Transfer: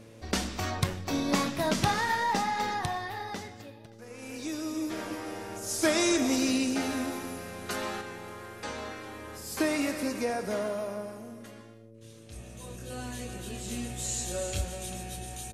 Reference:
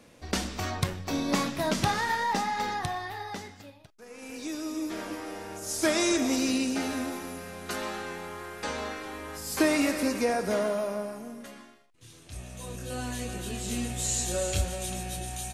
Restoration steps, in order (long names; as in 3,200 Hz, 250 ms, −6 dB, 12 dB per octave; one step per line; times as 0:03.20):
hum removal 112.1 Hz, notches 5
echo removal 573 ms −23 dB
level correction +4 dB, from 0:08.01